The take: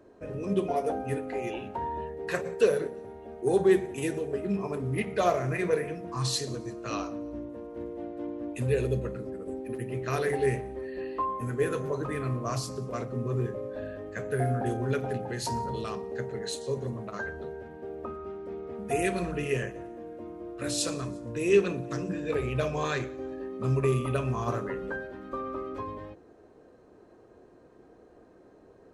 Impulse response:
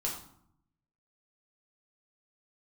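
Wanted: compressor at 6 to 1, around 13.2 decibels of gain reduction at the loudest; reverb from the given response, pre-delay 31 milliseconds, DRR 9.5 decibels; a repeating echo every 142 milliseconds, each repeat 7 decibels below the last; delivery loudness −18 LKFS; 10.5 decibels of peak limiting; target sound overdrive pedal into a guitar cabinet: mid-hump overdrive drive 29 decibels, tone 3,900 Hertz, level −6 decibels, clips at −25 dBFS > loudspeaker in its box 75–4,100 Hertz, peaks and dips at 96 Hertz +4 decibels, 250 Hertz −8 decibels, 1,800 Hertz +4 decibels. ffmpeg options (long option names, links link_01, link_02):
-filter_complex "[0:a]acompressor=threshold=-31dB:ratio=6,alimiter=level_in=7dB:limit=-24dB:level=0:latency=1,volume=-7dB,aecho=1:1:142|284|426|568|710:0.447|0.201|0.0905|0.0407|0.0183,asplit=2[link_01][link_02];[1:a]atrim=start_sample=2205,adelay=31[link_03];[link_02][link_03]afir=irnorm=-1:irlink=0,volume=-13dB[link_04];[link_01][link_04]amix=inputs=2:normalize=0,asplit=2[link_05][link_06];[link_06]highpass=frequency=720:poles=1,volume=29dB,asoftclip=type=tanh:threshold=-25dB[link_07];[link_05][link_07]amix=inputs=2:normalize=0,lowpass=frequency=3900:poles=1,volume=-6dB,highpass=75,equalizer=frequency=96:width_type=q:width=4:gain=4,equalizer=frequency=250:width_type=q:width=4:gain=-8,equalizer=frequency=1800:width_type=q:width=4:gain=4,lowpass=frequency=4100:width=0.5412,lowpass=frequency=4100:width=1.3066,volume=14dB"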